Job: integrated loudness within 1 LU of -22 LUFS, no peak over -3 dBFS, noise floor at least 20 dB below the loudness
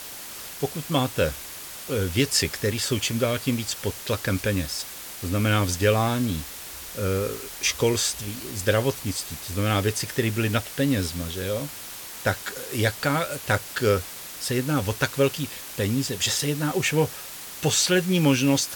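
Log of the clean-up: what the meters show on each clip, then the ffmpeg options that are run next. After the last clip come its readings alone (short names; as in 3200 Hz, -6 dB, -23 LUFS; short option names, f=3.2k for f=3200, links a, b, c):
noise floor -39 dBFS; noise floor target -45 dBFS; loudness -25.0 LUFS; peak -5.0 dBFS; loudness target -22.0 LUFS
-> -af "afftdn=nr=6:nf=-39"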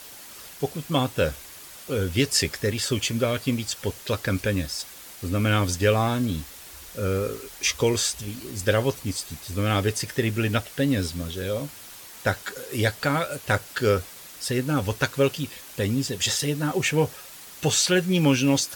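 noise floor -44 dBFS; noise floor target -45 dBFS
-> -af "afftdn=nr=6:nf=-44"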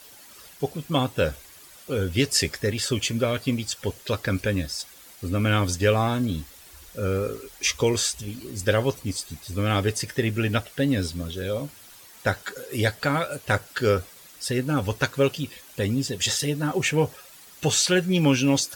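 noise floor -48 dBFS; loudness -25.5 LUFS; peak -5.5 dBFS; loudness target -22.0 LUFS
-> -af "volume=3.5dB,alimiter=limit=-3dB:level=0:latency=1"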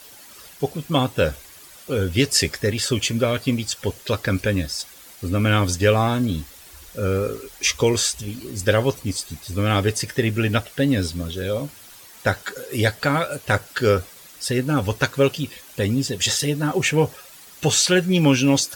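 loudness -22.0 LUFS; peak -3.0 dBFS; noise floor -45 dBFS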